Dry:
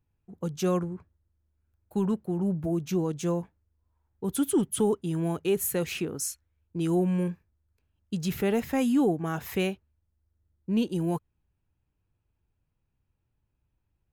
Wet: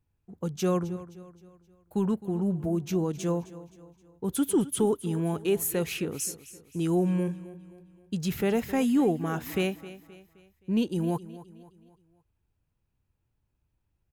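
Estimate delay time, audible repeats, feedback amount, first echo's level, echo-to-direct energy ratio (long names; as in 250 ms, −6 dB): 262 ms, 3, 44%, −16.5 dB, −15.5 dB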